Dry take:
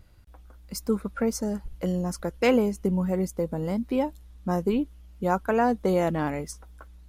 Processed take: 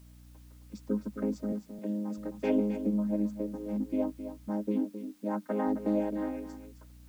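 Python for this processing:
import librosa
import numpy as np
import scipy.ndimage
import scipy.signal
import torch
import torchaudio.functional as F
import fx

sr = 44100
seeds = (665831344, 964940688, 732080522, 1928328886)

p1 = fx.chord_vocoder(x, sr, chord='major triad', root=56)
p2 = fx.add_hum(p1, sr, base_hz=60, snr_db=20)
p3 = fx.highpass(p2, sr, hz=180.0, slope=24, at=(1.52, 2.18))
p4 = fx.hum_notches(p3, sr, base_hz=60, count=5, at=(4.48, 5.66), fade=0.02)
p5 = p4 + 10.0 ** (-10.5 / 20.0) * np.pad(p4, (int(264 * sr / 1000.0), 0))[:len(p4)]
p6 = fx.quant_dither(p5, sr, seeds[0], bits=8, dither='triangular')
p7 = p5 + (p6 * 10.0 ** (-11.0 / 20.0))
y = p7 * 10.0 ** (-7.5 / 20.0)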